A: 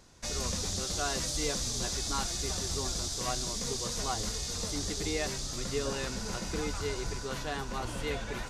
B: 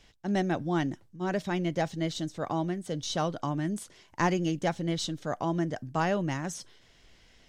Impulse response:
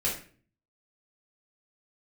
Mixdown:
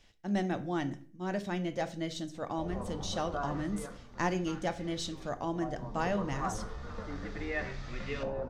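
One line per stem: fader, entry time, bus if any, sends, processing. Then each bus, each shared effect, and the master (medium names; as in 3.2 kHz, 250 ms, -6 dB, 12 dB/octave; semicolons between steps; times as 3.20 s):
3.62 s -7.5 dB -> 4.03 s -18.5 dB -> 5.32 s -18.5 dB -> 6.02 s -6.5 dB, 2.35 s, send -12 dB, LFO low-pass saw up 0.34 Hz 690–2500 Hz
-6.0 dB, 0.00 s, send -15 dB, none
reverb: on, RT60 0.45 s, pre-delay 3 ms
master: none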